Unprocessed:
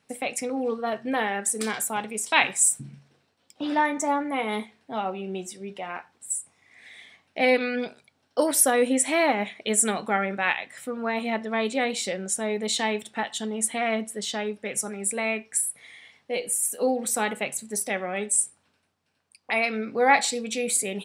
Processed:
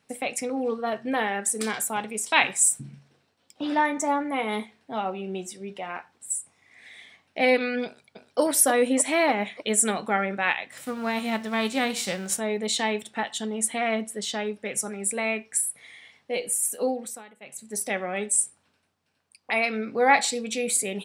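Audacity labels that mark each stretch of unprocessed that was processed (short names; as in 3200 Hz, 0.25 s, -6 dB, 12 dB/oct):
7.850000	8.410000	echo throw 0.3 s, feedback 60%, level -6.5 dB
10.710000	12.380000	spectral whitening exponent 0.6
16.760000	17.870000	dip -21.5 dB, fades 0.47 s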